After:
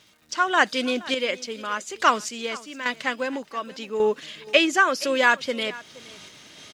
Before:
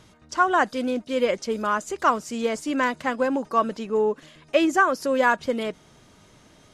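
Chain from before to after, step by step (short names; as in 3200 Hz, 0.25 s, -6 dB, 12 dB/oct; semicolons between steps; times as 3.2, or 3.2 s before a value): weighting filter D; AGC gain up to 10 dB; random-step tremolo, depth 85%; crackle 490/s -48 dBFS; echo 0.471 s -20 dB; gain -2 dB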